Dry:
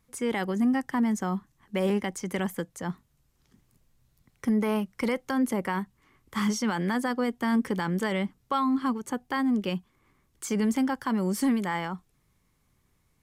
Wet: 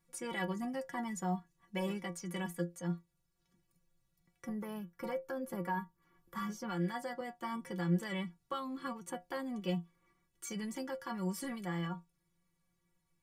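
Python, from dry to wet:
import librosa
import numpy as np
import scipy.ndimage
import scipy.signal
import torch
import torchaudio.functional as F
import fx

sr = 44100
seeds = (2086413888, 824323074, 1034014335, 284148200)

y = fx.stiff_resonator(x, sr, f0_hz=170.0, decay_s=0.21, stiffness=0.008)
y = fx.rider(y, sr, range_db=10, speed_s=2.0)
y = fx.spec_box(y, sr, start_s=4.44, length_s=2.25, low_hz=1800.0, high_hz=11000.0, gain_db=-7)
y = fx.band_squash(y, sr, depth_pct=40, at=(5.53, 7.21))
y = F.gain(torch.from_numpy(y), 2.0).numpy()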